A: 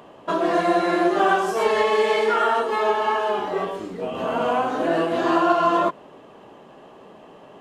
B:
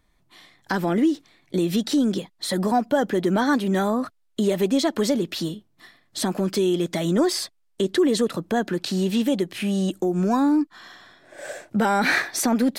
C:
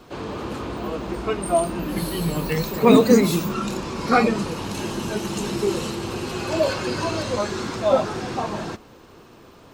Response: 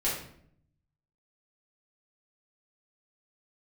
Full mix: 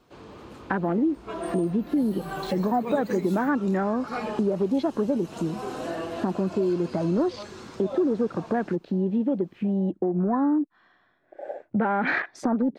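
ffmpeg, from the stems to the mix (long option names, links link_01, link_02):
-filter_complex "[0:a]adelay=1000,volume=-10.5dB[link_01];[1:a]afwtdn=0.0282,lowpass=2100,volume=2.5dB,asplit=2[link_02][link_03];[2:a]volume=-14dB[link_04];[link_03]apad=whole_len=379561[link_05];[link_01][link_05]sidechaincompress=threshold=-34dB:ratio=8:attack=16:release=217[link_06];[link_06][link_02][link_04]amix=inputs=3:normalize=0,acompressor=threshold=-25dB:ratio=2"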